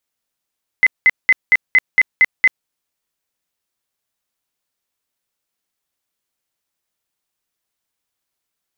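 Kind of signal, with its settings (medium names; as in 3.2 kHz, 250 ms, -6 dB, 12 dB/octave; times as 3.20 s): tone bursts 2.04 kHz, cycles 73, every 0.23 s, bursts 8, -6.5 dBFS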